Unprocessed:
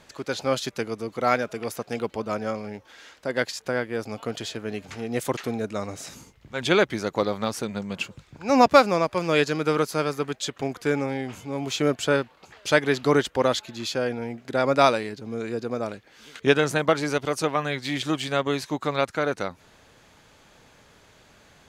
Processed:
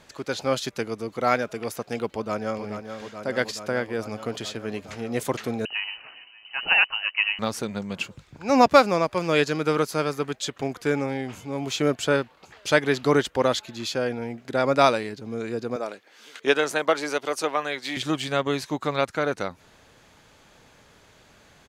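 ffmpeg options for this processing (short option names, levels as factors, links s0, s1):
-filter_complex "[0:a]asplit=2[s0][s1];[s1]afade=t=in:st=2.1:d=0.01,afade=t=out:st=2.65:d=0.01,aecho=0:1:430|860|1290|1720|2150|2580|3010|3440|3870|4300|4730|5160:0.398107|0.318486|0.254789|0.203831|0.163065|0.130452|0.104361|0.0834891|0.0667913|0.053433|0.0427464|0.0341971[s2];[s0][s2]amix=inputs=2:normalize=0,asettb=1/sr,asplit=3[s3][s4][s5];[s3]atrim=end=5.654[s6];[s4]atrim=start=5.65:end=7.39,asetpts=PTS-STARTPTS,afade=t=in:d=0.004:c=qsin,afade=t=out:st=1.736:d=0.004:c=qsin,lowpass=f=2600:t=q:w=0.5098,lowpass=f=2600:t=q:w=0.6013,lowpass=f=2600:t=q:w=0.9,lowpass=f=2600:t=q:w=2.563,afreqshift=-3100[s7];[s5]atrim=start=7.386[s8];[s6][s7]acrossfade=d=0.004:c1=hsin:c2=qsin[s9];[s9][s8]acrossfade=d=0.004:c1=qsin:c2=hsin,asettb=1/sr,asplit=3[s10][s11][s12];[s10]atrim=end=15.764[s13];[s11]atrim=start=15.76:end=17.97,asetpts=PTS-STARTPTS,afade=t=in:d=0.004:c=qsin,afade=t=out:st=2.206:d=0.004:c=qsin,highpass=350[s14];[s12]atrim=start=17.966[s15];[s13][s14]acrossfade=d=0.004:c1=hsin:c2=qsin[s16];[s16][s15]acrossfade=d=0.004:c1=qsin:c2=hsin"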